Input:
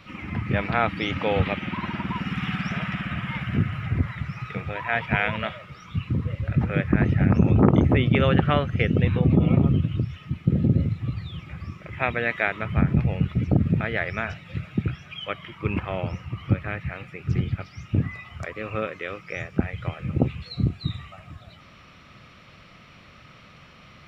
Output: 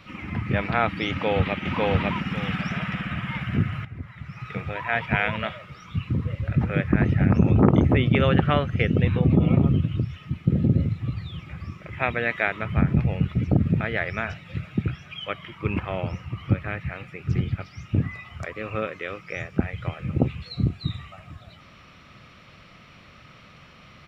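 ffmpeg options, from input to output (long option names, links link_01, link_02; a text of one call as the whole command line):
ffmpeg -i in.wav -filter_complex "[0:a]asplit=2[link_01][link_02];[link_02]afade=type=in:start_time=1.1:duration=0.01,afade=type=out:start_time=1.65:duration=0.01,aecho=0:1:550|1100|1650:0.944061|0.188812|0.0377624[link_03];[link_01][link_03]amix=inputs=2:normalize=0,asplit=2[link_04][link_05];[link_04]atrim=end=3.85,asetpts=PTS-STARTPTS,afade=type=out:start_time=3.846:duration=0.004:curve=hsin:silence=0.199526[link_06];[link_05]atrim=start=3.85,asetpts=PTS-STARTPTS,afade=type=in:duration=0.71:curve=qua:silence=0.199526[link_07];[link_06][link_07]concat=n=2:v=0:a=1" out.wav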